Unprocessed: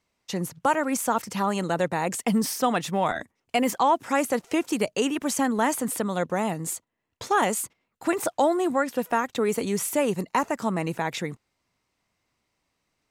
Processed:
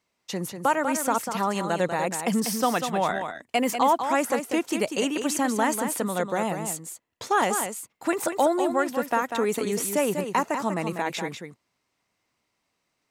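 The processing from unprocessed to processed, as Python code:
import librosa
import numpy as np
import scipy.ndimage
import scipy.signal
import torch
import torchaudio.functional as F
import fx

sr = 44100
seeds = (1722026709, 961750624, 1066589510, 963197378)

y = fx.low_shelf(x, sr, hz=95.0, db=-12.0)
y = y + 10.0 ** (-7.5 / 20.0) * np.pad(y, (int(194 * sr / 1000.0), 0))[:len(y)]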